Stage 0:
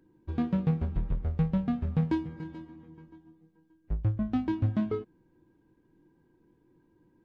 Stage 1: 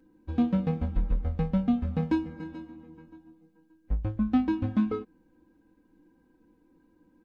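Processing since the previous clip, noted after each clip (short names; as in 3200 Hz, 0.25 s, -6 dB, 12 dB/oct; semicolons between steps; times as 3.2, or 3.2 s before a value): comb 3.9 ms, depth 86%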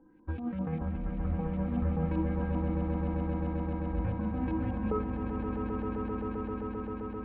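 negative-ratio compressor -30 dBFS, ratio -1; LFO low-pass saw up 5.1 Hz 830–2800 Hz; swelling echo 0.131 s, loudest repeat 8, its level -7.5 dB; gain -3.5 dB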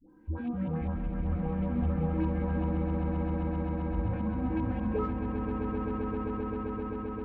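in parallel at -11 dB: soft clip -34 dBFS, distortion -9 dB; on the sum: dispersion highs, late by 94 ms, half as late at 570 Hz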